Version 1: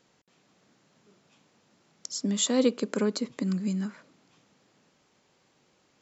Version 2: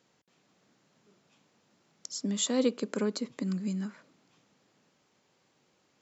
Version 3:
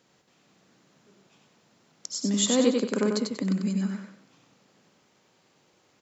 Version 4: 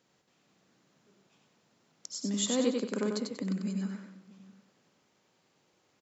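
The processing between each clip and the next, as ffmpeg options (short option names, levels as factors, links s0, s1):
-af "highpass=71,volume=0.668"
-af "aecho=1:1:94|188|282|376:0.631|0.202|0.0646|0.0207,volume=1.68"
-filter_complex "[0:a]asplit=2[s0][s1];[s1]adelay=641.4,volume=0.0891,highshelf=f=4000:g=-14.4[s2];[s0][s2]amix=inputs=2:normalize=0,volume=0.473"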